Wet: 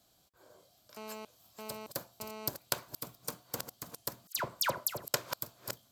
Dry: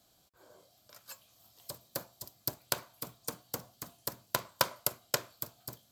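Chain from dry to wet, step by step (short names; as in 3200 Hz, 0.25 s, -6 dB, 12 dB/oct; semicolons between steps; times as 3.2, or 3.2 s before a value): reverse delay 0.452 s, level -9.5 dB; 0.97–2.48 GSM buzz -44 dBFS; 4.27–5.08 dispersion lows, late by 91 ms, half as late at 1900 Hz; gain -1 dB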